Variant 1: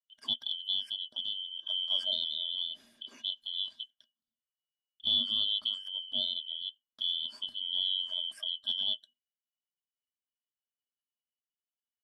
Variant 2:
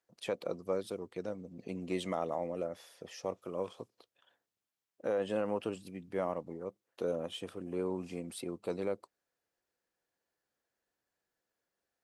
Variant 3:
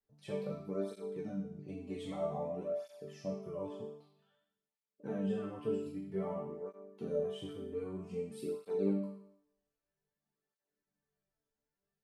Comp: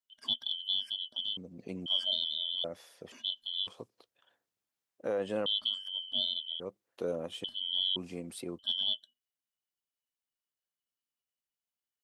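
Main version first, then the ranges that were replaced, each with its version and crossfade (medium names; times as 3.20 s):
1
1.37–1.86 s: from 2
2.64–3.12 s: from 2
3.67–5.46 s: from 2
6.60–7.44 s: from 2
7.96–8.59 s: from 2
not used: 3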